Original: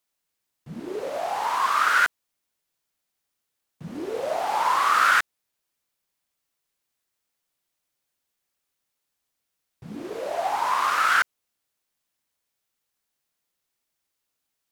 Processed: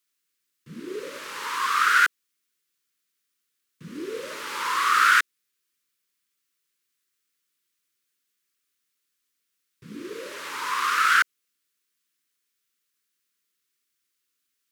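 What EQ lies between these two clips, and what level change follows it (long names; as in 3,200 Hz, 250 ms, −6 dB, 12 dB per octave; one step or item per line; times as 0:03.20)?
high-pass filter 340 Hz 6 dB per octave
Butterworth band-reject 730 Hz, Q 0.96
+2.5 dB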